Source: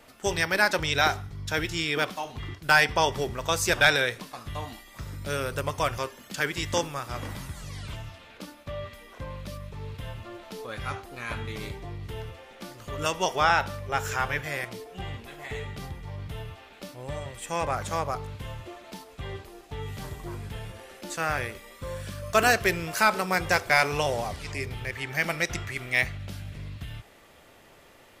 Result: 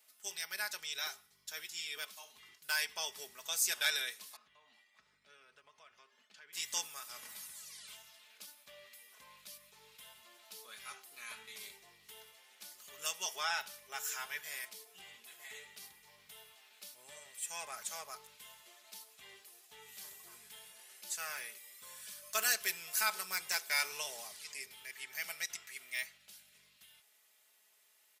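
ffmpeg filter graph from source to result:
ffmpeg -i in.wav -filter_complex "[0:a]asettb=1/sr,asplit=3[link_01][link_02][link_03];[link_01]atrim=end=4.364[link_04];[link_02]atrim=start=4.36:end=6.53,asetpts=PTS-STARTPTS,afade=type=in:duration=0.004:curve=qsin,afade=type=out:start_time=2.166:duration=0.004:curve=qsin,lowpass=2700,agate=range=-33dB:threshold=-48dB:ratio=3:release=100:detection=peak,acompressor=threshold=-47dB:ratio=2.5:attack=3.2:release=140:knee=1:detection=peak[link_05];[link_03]atrim=start=6.526[link_06];[link_04][link_05]acrossfade=duration=0.004:curve1=hsin:curve2=qsin[link_07];[link_07][link_06]acrossfade=duration=0.004:curve1=qsin:curve2=hsin,aderivative,aecho=1:1:4.7:0.59,dynaudnorm=framelen=210:gausssize=31:maxgain=5dB,volume=-7dB" out.wav

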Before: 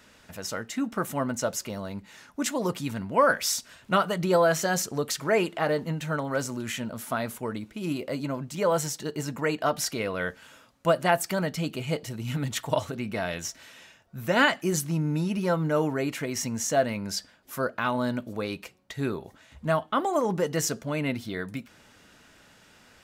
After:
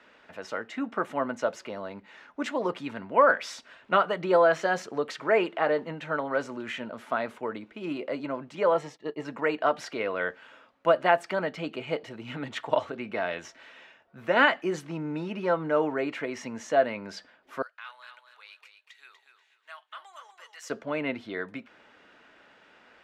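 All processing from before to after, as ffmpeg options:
ffmpeg -i in.wav -filter_complex "[0:a]asettb=1/sr,asplit=3[link_01][link_02][link_03];[link_01]atrim=end=8.744[link_04];[link_02]atrim=start=8.74:end=9.25,asetpts=PTS-STARTPTS,afade=type=in:duration=0.004:curve=qsin,afade=type=out:start_time=0.506:duration=0.004:curve=qsin,agate=range=-33dB:threshold=-33dB:ratio=3:release=100:detection=peak,asuperstop=centerf=1500:order=8:qfactor=6.5,highshelf=frequency=4300:gain=-8[link_05];[link_03]atrim=start=9.246[link_06];[link_04][link_05]acrossfade=duration=0.004:curve1=hsin:curve2=qsin[link_07];[link_07][link_06]acrossfade=duration=0.004:curve1=qsin:curve2=hsin,asettb=1/sr,asplit=3[link_08][link_09][link_10];[link_08]atrim=end=17.624[link_11];[link_09]atrim=start=17.62:end=20.7,asetpts=PTS-STARTPTS,afade=type=in:duration=0.004:curve=qsin,afade=type=out:start_time=3.076:duration=0.004:curve=qsin,highpass=1100,aderivative,aecho=1:1:242|484|726:0.422|0.118|0.0331,atrim=end_sample=135828[link_12];[link_10]atrim=start=20.696[link_13];[link_11][link_12]acrossfade=duration=0.004:curve1=hsin:curve2=qsin[link_14];[link_14][link_13]acrossfade=duration=0.004:curve1=qsin:curve2=hsin,lowpass=8900,acrossover=split=270 3300:gain=0.141 1 0.1[link_15][link_16][link_17];[link_15][link_16][link_17]amix=inputs=3:normalize=0,volume=1.5dB" out.wav

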